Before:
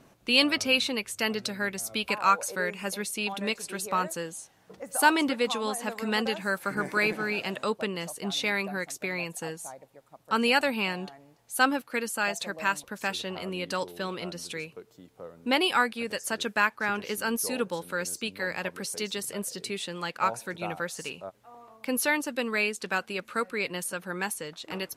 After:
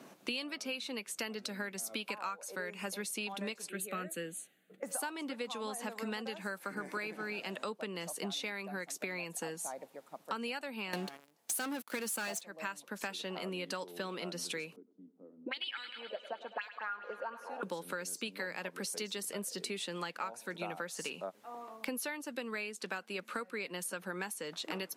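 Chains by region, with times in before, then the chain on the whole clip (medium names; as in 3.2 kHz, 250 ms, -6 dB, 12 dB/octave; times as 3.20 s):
3.69–4.83 s: static phaser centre 2.3 kHz, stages 4 + three bands expanded up and down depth 70%
10.93–12.41 s: treble shelf 7.3 kHz +8.5 dB + waveshaping leveller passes 5
14.76–17.63 s: auto-wah 200–3800 Hz, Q 6.4, up, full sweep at -20 dBFS + thinning echo 103 ms, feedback 76%, high-pass 190 Hz, level -16 dB
whole clip: steep high-pass 170 Hz; compression 16:1, threshold -39 dBFS; trim +3.5 dB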